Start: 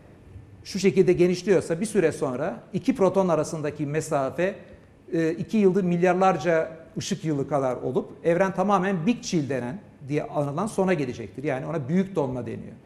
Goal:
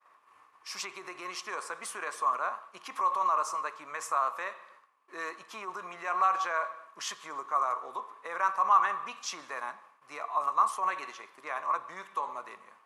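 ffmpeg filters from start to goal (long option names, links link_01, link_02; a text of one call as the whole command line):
ffmpeg -i in.wav -af "alimiter=limit=-18dB:level=0:latency=1:release=41,agate=range=-33dB:threshold=-43dB:ratio=3:detection=peak,highpass=frequency=1100:width_type=q:width=11,volume=-4dB" out.wav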